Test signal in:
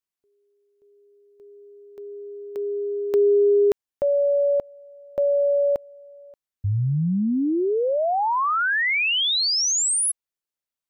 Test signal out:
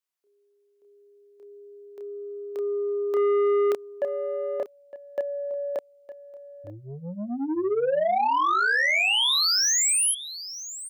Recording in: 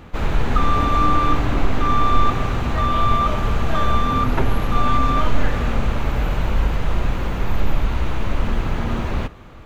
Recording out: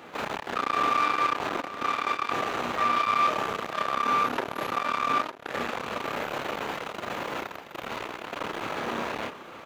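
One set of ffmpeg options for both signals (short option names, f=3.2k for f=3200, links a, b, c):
-filter_complex "[0:a]asplit=2[a][b];[b]adelay=29,volume=-3.5dB[c];[a][c]amix=inputs=2:normalize=0,asoftclip=type=tanh:threshold=-17dB,highpass=370,aecho=1:1:911:0.188"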